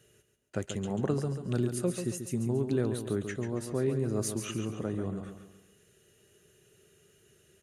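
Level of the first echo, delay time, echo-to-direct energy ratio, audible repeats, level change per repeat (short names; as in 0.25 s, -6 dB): -8.0 dB, 0.139 s, -7.0 dB, 4, -7.5 dB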